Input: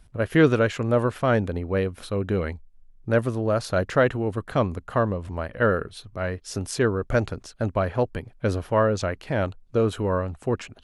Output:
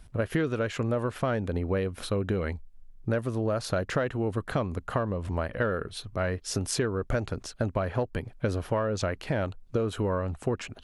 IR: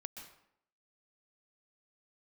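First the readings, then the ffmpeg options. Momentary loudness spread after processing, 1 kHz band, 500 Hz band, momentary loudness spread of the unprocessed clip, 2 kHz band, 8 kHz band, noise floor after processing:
4 LU, −6.0 dB, −6.0 dB, 9 LU, −6.0 dB, +1.0 dB, −52 dBFS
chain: -filter_complex "[0:a]asplit=2[link_01][link_02];[link_02]asoftclip=type=tanh:threshold=-14.5dB,volume=-9dB[link_03];[link_01][link_03]amix=inputs=2:normalize=0,acompressor=threshold=-24dB:ratio=10"

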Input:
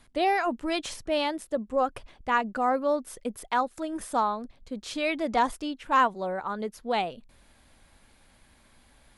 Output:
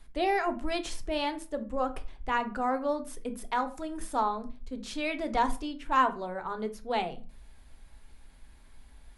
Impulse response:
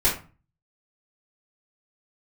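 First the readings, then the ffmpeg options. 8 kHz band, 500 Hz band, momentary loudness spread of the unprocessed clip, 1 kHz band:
−3.5 dB, −4.0 dB, 11 LU, −3.0 dB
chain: -filter_complex "[0:a]asplit=2[link_01][link_02];[1:a]atrim=start_sample=2205,lowshelf=frequency=260:gain=9.5[link_03];[link_02][link_03]afir=irnorm=-1:irlink=0,volume=-21dB[link_04];[link_01][link_04]amix=inputs=2:normalize=0,volume=-4.5dB"

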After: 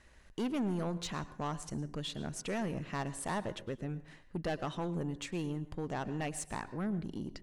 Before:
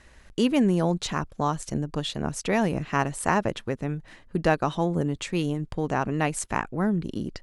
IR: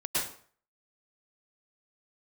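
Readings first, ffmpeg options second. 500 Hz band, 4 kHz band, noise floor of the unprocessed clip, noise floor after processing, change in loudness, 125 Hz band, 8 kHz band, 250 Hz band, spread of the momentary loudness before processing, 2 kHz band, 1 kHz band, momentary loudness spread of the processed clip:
−12.0 dB, −9.5 dB, −53 dBFS, −58 dBFS, −11.5 dB, −10.5 dB, −9.0 dB, −11.0 dB, 7 LU, −12.5 dB, −12.5 dB, 6 LU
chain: -filter_complex "[0:a]asoftclip=type=tanh:threshold=-21.5dB,asplit=2[link_01][link_02];[1:a]atrim=start_sample=2205[link_03];[link_02][link_03]afir=irnorm=-1:irlink=0,volume=-22.5dB[link_04];[link_01][link_04]amix=inputs=2:normalize=0,volume=-8.5dB"

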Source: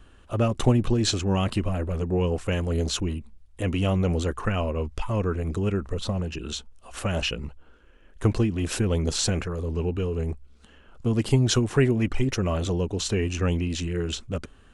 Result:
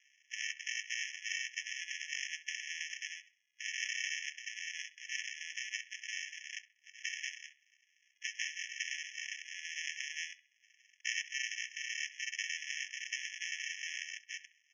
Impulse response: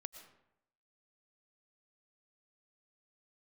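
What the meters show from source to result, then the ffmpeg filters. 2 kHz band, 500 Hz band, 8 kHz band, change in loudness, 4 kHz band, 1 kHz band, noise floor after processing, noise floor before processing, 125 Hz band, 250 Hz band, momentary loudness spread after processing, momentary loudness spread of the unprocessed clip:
0.0 dB, below −40 dB, −7.0 dB, −13.5 dB, −8.0 dB, below −40 dB, −75 dBFS, −53 dBFS, below −40 dB, below −40 dB, 7 LU, 10 LU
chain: -filter_complex "[0:a]lowshelf=frequency=95:gain=-9.5,alimiter=limit=-19dB:level=0:latency=1:release=428,aresample=16000,acrusher=samples=39:mix=1:aa=0.000001,aresample=44100,asplit=2[link_01][link_02];[link_02]adelay=66,lowpass=frequency=3000:poles=1,volume=-14.5dB,asplit=2[link_03][link_04];[link_04]adelay=66,lowpass=frequency=3000:poles=1,volume=0.38,asplit=2[link_05][link_06];[link_06]adelay=66,lowpass=frequency=3000:poles=1,volume=0.38,asplit=2[link_07][link_08];[link_08]adelay=66,lowpass=frequency=3000:poles=1,volume=0.38[link_09];[link_01][link_03][link_05][link_07][link_09]amix=inputs=5:normalize=0,afftfilt=real='re*eq(mod(floor(b*sr/1024/1700),2),1)':imag='im*eq(mod(floor(b*sr/1024/1700),2),1)':win_size=1024:overlap=0.75,volume=6dB"

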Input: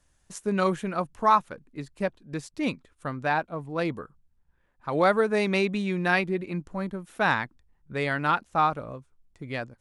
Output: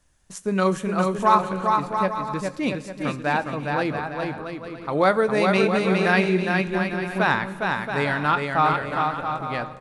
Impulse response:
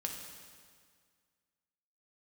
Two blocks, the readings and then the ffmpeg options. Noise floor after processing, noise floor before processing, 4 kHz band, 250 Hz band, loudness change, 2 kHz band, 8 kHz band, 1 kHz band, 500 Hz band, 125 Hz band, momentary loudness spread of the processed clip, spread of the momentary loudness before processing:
−42 dBFS, −69 dBFS, +5.0 dB, +5.5 dB, +4.0 dB, +5.0 dB, +5.0 dB, +5.0 dB, +5.0 dB, +5.5 dB, 10 LU, 16 LU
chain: -filter_complex "[0:a]aecho=1:1:410|676.5|849.7|962.3|1036:0.631|0.398|0.251|0.158|0.1,asplit=2[link_01][link_02];[1:a]atrim=start_sample=2205,adelay=21[link_03];[link_02][link_03]afir=irnorm=-1:irlink=0,volume=-13dB[link_04];[link_01][link_04]amix=inputs=2:normalize=0,volume=2.5dB"

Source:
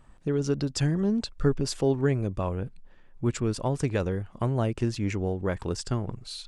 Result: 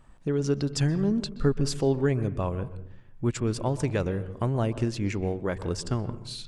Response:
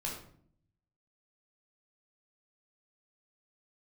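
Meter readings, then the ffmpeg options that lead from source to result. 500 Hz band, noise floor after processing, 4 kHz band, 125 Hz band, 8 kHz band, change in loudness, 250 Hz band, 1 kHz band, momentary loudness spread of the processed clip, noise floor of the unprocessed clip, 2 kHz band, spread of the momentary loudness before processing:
0.0 dB, −49 dBFS, 0.0 dB, +0.5 dB, 0.0 dB, +0.5 dB, +0.5 dB, 0.0 dB, 6 LU, −54 dBFS, 0.0 dB, 6 LU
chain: -filter_complex "[0:a]asplit=2[link_01][link_02];[1:a]atrim=start_sample=2205,lowpass=3800,adelay=124[link_03];[link_02][link_03]afir=irnorm=-1:irlink=0,volume=-16dB[link_04];[link_01][link_04]amix=inputs=2:normalize=0"

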